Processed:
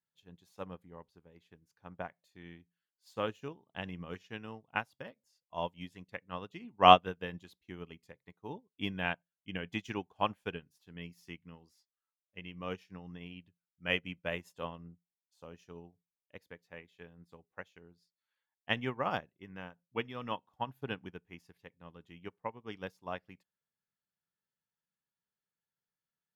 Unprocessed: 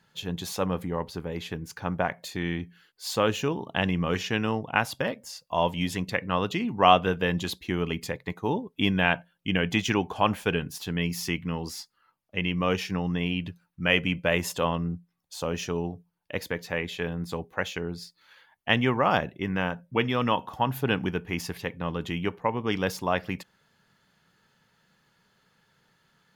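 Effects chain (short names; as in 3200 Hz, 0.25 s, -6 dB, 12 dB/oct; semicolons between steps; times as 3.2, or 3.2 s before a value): upward expander 2.5:1, over -36 dBFS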